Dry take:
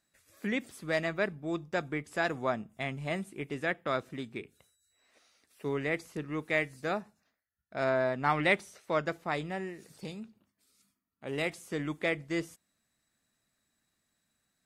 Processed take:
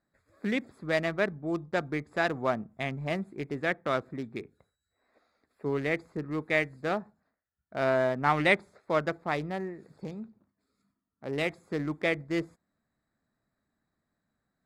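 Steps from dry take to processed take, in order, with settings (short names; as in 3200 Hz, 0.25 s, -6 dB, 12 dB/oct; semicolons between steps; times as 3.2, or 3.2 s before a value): Wiener smoothing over 15 samples; gain +3 dB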